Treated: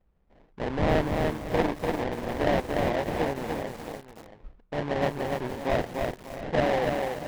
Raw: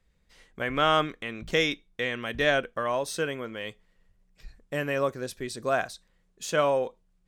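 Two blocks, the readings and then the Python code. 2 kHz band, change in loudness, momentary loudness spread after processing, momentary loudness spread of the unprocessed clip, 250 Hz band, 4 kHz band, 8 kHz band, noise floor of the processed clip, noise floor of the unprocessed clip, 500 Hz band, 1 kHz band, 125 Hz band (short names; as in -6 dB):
-4.5 dB, 0.0 dB, 11 LU, 12 LU, +5.0 dB, -7.0 dB, -7.0 dB, -63 dBFS, -69 dBFS, +1.0 dB, 0.0 dB, +6.5 dB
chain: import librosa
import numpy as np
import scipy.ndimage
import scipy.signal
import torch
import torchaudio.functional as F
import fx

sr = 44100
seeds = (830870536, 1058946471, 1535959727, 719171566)

y = fx.sample_hold(x, sr, seeds[0], rate_hz=1300.0, jitter_pct=20)
y = scipy.signal.sosfilt(scipy.signal.bessel(2, 2200.0, 'lowpass', norm='mag', fs=sr, output='sos'), y)
y = y + 10.0 ** (-14.0 / 20.0) * np.pad(y, (int(677 * sr / 1000.0), 0))[:len(y)]
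y = fx.echo_crushed(y, sr, ms=293, feedback_pct=35, bits=7, wet_db=-3.0)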